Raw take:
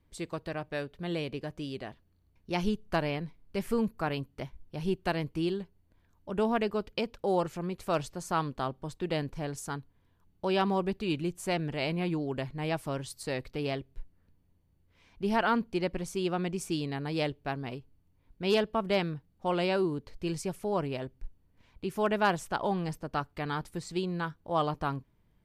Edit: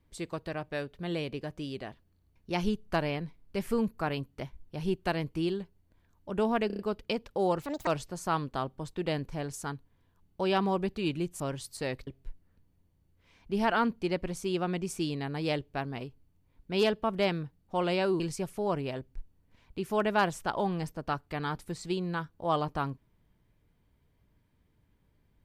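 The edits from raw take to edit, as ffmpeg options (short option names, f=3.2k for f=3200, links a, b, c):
-filter_complex "[0:a]asplit=10[a][b][c][d][e][f][g][h][i][j];[a]atrim=end=6.702[k];[b]atrim=start=6.668:end=6.702[l];[c]atrim=start=6.668:end=6.702[m];[d]atrim=start=6.668:end=6.702[n];[e]atrim=start=6.668:end=7.504[o];[f]atrim=start=7.5:end=7.91,asetpts=PTS-STARTPTS,asetrate=72324,aresample=44100[p];[g]atrim=start=7.906:end=11.442[q];[h]atrim=start=12.858:end=13.532[r];[i]atrim=start=13.778:end=19.912[s];[j]atrim=start=20.258[t];[k][l]acrossfade=d=0.004:c1=hsin:c2=hsin[u];[u][m]acrossfade=d=0.004:c1=hsin:c2=hsin[v];[v][n]acrossfade=d=0.004:c1=hsin:c2=hsin[w];[w][o]acrossfade=d=0.004:c1=hsin:c2=hsin[x];[x][p]acrossfade=d=0.004:c1=hsin:c2=hsin[y];[y][q]acrossfade=d=0.004:c1=hsin:c2=hsin[z];[z][r]acrossfade=d=0.004:c1=hsin:c2=hsin[aa];[aa][s]acrossfade=d=0.004:c1=hsin:c2=hsin[ab];[ab][t]acrossfade=d=0.004:c1=hsin:c2=hsin"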